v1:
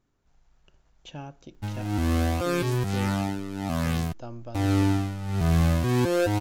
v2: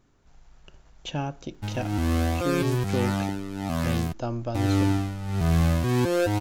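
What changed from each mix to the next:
speech +9.5 dB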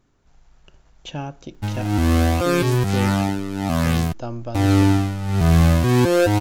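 background +7.0 dB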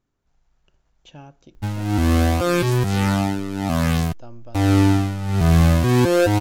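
speech -12.0 dB

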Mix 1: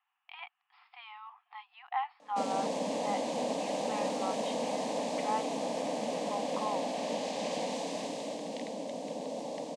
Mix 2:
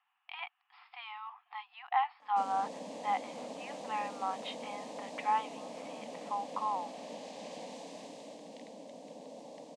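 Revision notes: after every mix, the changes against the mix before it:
speech +3.5 dB; background -10.5 dB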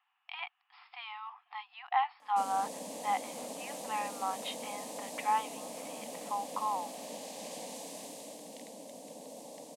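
master: remove air absorption 120 m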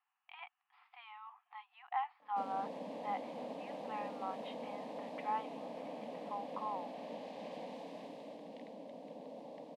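speech -6.0 dB; master: add air absorption 370 m

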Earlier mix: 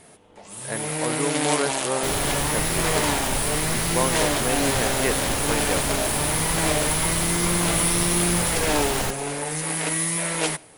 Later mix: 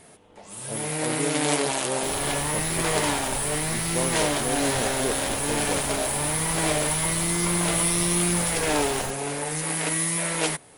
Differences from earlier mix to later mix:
speech: add Gaussian blur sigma 11 samples; second sound -6.0 dB; reverb: off

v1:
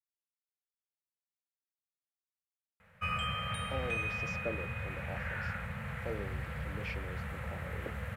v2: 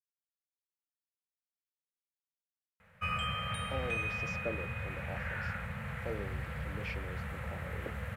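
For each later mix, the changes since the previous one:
none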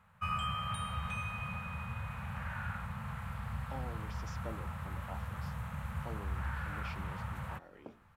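background: entry -2.80 s; master: add graphic EQ 500/1000/2000 Hz -12/+9/-10 dB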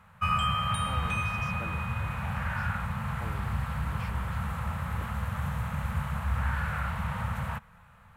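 speech: entry -2.85 s; background +8.5 dB

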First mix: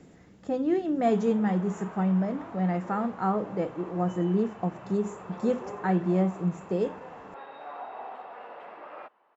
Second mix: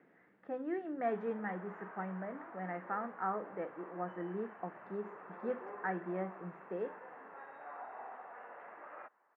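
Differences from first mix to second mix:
speech: add Bessel high-pass 360 Hz, order 2; master: add ladder low-pass 2100 Hz, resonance 50%

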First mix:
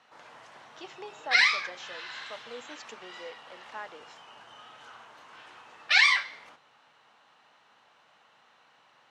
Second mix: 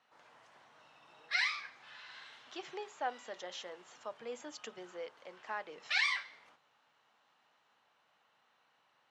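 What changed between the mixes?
speech: entry +1.75 s; background -11.0 dB

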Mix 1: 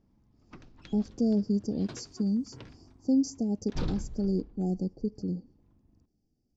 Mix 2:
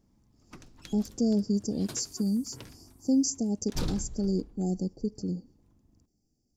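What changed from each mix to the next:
background: remove LPF 6900 Hz 12 dB/oct; master: remove air absorption 160 m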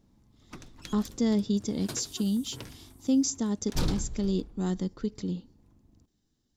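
speech: remove brick-wall FIR band-stop 840–4400 Hz; background +3.5 dB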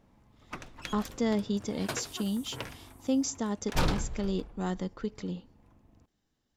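speech -4.0 dB; master: add band shelf 1200 Hz +8.5 dB 2.9 oct

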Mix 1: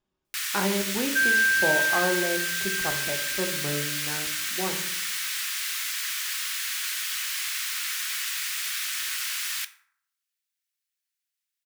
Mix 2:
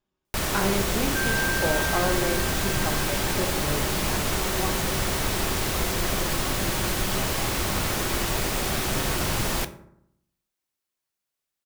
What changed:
first sound: remove inverse Chebyshev high-pass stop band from 610 Hz, stop band 50 dB; second sound -7.0 dB

